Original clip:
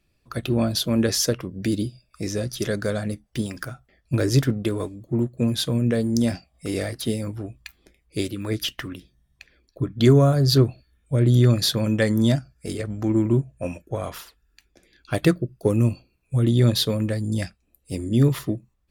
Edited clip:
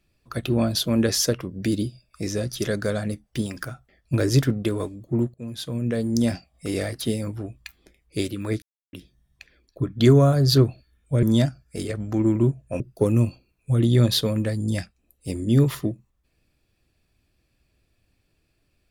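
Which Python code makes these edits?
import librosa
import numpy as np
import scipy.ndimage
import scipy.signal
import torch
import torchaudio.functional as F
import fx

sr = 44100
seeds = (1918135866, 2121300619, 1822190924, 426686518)

y = fx.edit(x, sr, fx.fade_in_from(start_s=5.34, length_s=0.91, floor_db=-18.5),
    fx.silence(start_s=8.62, length_s=0.31),
    fx.cut(start_s=11.23, length_s=0.9),
    fx.cut(start_s=13.7, length_s=1.74), tone=tone)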